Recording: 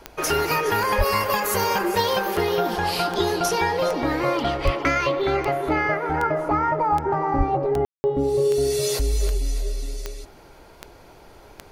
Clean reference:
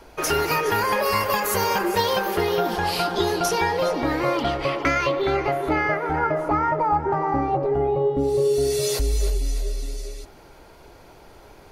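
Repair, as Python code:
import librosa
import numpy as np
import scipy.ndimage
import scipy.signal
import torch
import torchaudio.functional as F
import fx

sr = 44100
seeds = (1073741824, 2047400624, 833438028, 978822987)

y = fx.fix_declick_ar(x, sr, threshold=10.0)
y = fx.fix_deplosive(y, sr, at_s=(0.97, 4.64, 7.37))
y = fx.fix_ambience(y, sr, seeds[0], print_start_s=10.3, print_end_s=10.8, start_s=7.85, end_s=8.04)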